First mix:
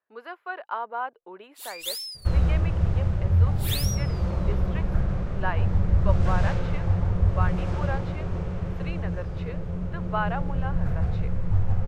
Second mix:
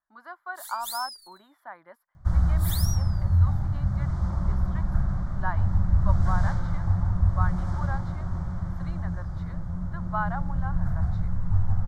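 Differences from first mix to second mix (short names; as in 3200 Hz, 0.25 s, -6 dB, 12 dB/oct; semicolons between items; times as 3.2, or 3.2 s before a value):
first sound: entry -1.00 s; master: add fixed phaser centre 1100 Hz, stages 4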